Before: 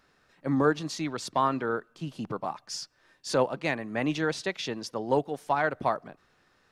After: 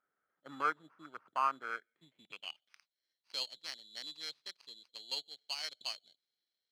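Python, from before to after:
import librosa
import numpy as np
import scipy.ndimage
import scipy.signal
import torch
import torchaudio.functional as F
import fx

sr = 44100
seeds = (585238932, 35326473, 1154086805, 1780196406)

y = fx.wiener(x, sr, points=41)
y = fx.sample_hold(y, sr, seeds[0], rate_hz=3700.0, jitter_pct=0)
y = fx.filter_sweep_bandpass(y, sr, from_hz=1300.0, to_hz=4100.0, start_s=1.53, end_s=2.87, q=5.4)
y = y * 10.0 ** (4.0 / 20.0)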